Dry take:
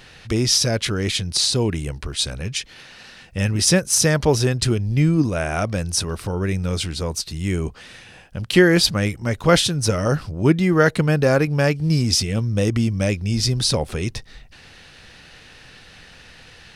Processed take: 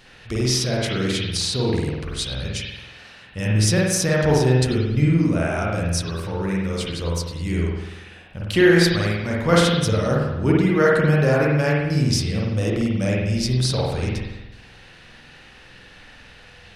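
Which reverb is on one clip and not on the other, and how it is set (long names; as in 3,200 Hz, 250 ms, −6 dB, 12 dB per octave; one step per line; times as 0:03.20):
spring reverb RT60 1 s, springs 47 ms, chirp 55 ms, DRR −4 dB
level −5.5 dB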